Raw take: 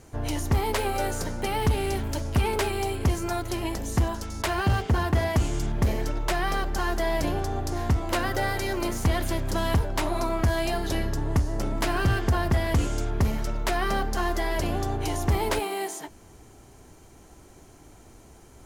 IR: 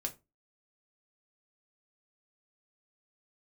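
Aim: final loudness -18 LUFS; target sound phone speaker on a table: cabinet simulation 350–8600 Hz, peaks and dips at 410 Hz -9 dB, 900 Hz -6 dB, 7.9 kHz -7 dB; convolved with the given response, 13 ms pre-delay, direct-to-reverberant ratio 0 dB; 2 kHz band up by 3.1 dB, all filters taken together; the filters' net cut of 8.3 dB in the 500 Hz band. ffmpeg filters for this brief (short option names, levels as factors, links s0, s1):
-filter_complex "[0:a]equalizer=f=500:t=o:g=-7,equalizer=f=2000:t=o:g=4.5,asplit=2[s0][s1];[1:a]atrim=start_sample=2205,adelay=13[s2];[s1][s2]afir=irnorm=-1:irlink=0,volume=1[s3];[s0][s3]amix=inputs=2:normalize=0,highpass=f=350:w=0.5412,highpass=f=350:w=1.3066,equalizer=f=410:t=q:w=4:g=-9,equalizer=f=900:t=q:w=4:g=-6,equalizer=f=7900:t=q:w=4:g=-7,lowpass=f=8600:w=0.5412,lowpass=f=8600:w=1.3066,volume=3.76"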